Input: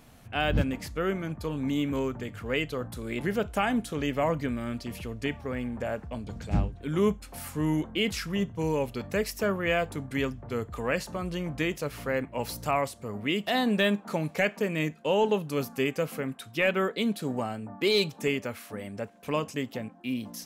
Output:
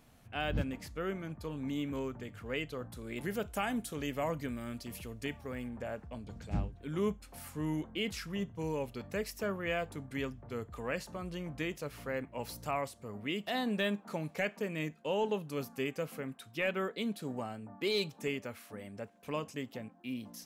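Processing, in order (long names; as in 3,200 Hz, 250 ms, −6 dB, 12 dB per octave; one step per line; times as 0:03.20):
0:03.16–0:05.69: high-shelf EQ 6,800 Hz +11 dB
level −8 dB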